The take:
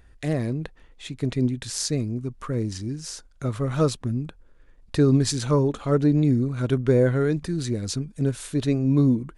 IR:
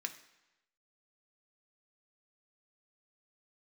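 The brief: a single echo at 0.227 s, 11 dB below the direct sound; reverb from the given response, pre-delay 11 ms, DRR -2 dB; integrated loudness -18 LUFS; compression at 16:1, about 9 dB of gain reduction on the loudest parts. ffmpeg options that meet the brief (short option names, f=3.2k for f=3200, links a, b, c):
-filter_complex "[0:a]acompressor=threshold=-23dB:ratio=16,aecho=1:1:227:0.282,asplit=2[a][b];[1:a]atrim=start_sample=2205,adelay=11[c];[b][c]afir=irnorm=-1:irlink=0,volume=2dB[d];[a][d]amix=inputs=2:normalize=0,volume=9.5dB"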